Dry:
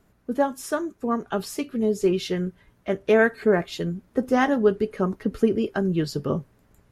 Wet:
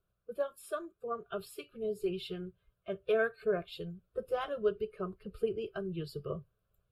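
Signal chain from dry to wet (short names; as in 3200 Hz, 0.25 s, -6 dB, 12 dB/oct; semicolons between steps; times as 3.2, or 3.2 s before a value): bin magnitudes rounded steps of 15 dB; fixed phaser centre 1300 Hz, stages 8; spectral noise reduction 8 dB; gain -8.5 dB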